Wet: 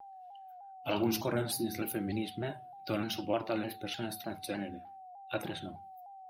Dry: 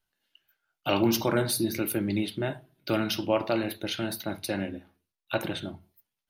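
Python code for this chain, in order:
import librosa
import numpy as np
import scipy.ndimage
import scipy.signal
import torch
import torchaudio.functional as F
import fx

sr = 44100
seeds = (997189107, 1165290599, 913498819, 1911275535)

y = fx.spec_quant(x, sr, step_db=15)
y = y + 10.0 ** (-41.0 / 20.0) * np.sin(2.0 * np.pi * 760.0 * np.arange(len(y)) / sr)
y = fx.vibrato_shape(y, sr, shape='saw_down', rate_hz=3.3, depth_cents=100.0)
y = F.gain(torch.from_numpy(y), -6.5).numpy()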